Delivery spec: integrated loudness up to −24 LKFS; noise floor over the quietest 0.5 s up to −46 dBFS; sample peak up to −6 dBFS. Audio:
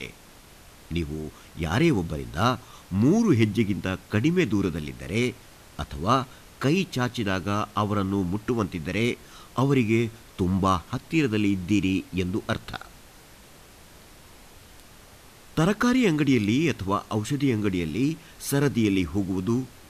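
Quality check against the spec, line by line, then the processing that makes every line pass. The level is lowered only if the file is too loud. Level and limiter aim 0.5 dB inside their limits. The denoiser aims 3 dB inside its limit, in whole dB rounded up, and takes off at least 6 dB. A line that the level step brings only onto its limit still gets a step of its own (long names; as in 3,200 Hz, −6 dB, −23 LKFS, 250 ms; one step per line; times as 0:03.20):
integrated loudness −25.5 LKFS: in spec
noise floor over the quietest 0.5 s −50 dBFS: in spec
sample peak −9.5 dBFS: in spec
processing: no processing needed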